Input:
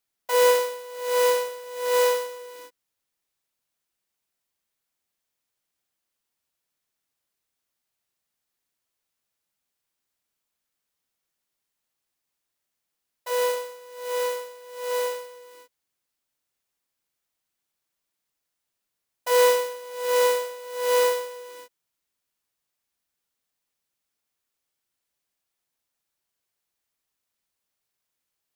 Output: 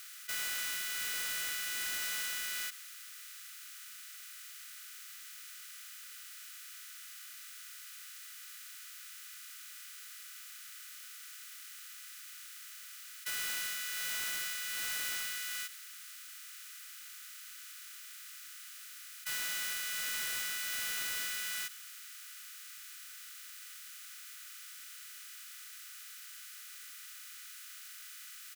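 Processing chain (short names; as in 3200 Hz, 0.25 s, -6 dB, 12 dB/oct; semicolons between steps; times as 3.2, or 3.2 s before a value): per-bin compression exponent 0.4; Chebyshev high-pass 1200 Hz, order 10; limiter -20.5 dBFS, peak gain reduction 7 dB; hard clip -33 dBFS, distortion -8 dB; feedback echo 0.105 s, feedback 52%, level -21 dB; gain -1.5 dB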